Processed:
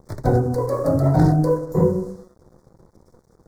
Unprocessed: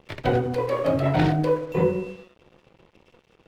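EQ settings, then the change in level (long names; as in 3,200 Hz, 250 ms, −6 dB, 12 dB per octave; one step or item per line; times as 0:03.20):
Butterworth band-reject 2,800 Hz, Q 0.6
low-shelf EQ 240 Hz +9.5 dB
high-shelf EQ 2,800 Hz +10 dB
0.0 dB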